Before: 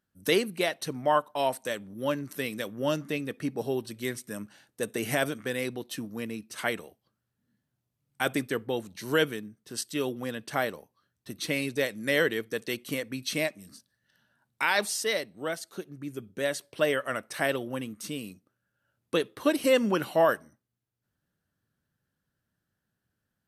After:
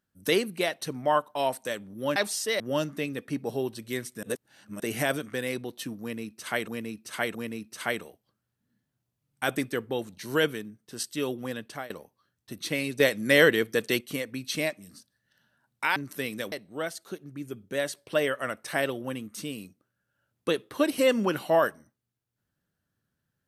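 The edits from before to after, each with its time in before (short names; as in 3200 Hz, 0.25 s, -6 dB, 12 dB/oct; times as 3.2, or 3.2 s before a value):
2.16–2.72 swap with 14.74–15.18
4.35–4.92 reverse
6.13–6.8 loop, 3 plays
10.37–10.68 fade out, to -20.5 dB
11.78–12.79 gain +6 dB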